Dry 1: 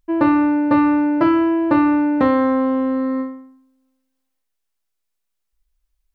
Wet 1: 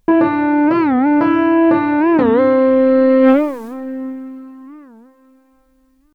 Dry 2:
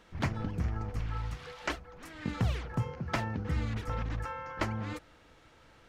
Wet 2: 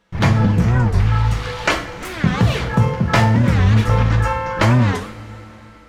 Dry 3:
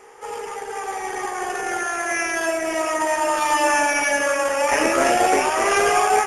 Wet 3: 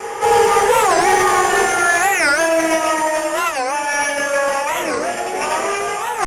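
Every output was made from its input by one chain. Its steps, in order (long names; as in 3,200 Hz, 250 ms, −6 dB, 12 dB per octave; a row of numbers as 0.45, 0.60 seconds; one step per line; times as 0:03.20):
noise gate with hold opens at −45 dBFS
compressor whose output falls as the input rises −29 dBFS, ratio −1
soft clipping −21 dBFS
coupled-rooms reverb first 0.41 s, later 4.2 s, from −20 dB, DRR 1.5 dB
wow of a warped record 45 rpm, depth 250 cents
normalise the peak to −1.5 dBFS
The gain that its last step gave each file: +18.0, +16.5, +10.5 decibels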